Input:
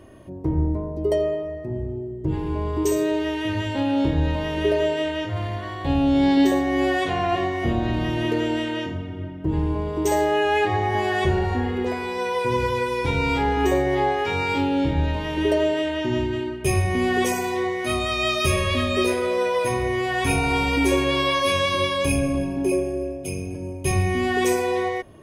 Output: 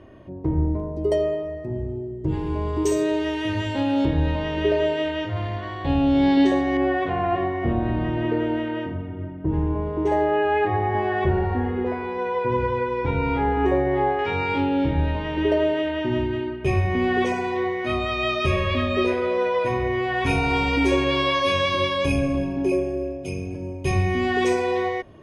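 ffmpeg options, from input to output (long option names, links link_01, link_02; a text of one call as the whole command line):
ffmpeg -i in.wav -af "asetnsamples=nb_out_samples=441:pad=0,asendcmd='0.8 lowpass f 8900;4.05 lowpass f 4300;6.77 lowpass f 1800;14.19 lowpass f 3000;20.26 lowpass f 5000',lowpass=3500" out.wav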